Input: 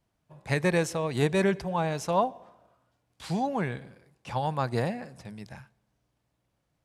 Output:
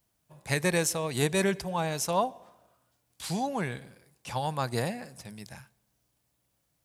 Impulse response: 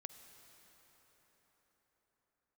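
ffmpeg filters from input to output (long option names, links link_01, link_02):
-af "aemphasis=mode=production:type=75kf,volume=-2.5dB"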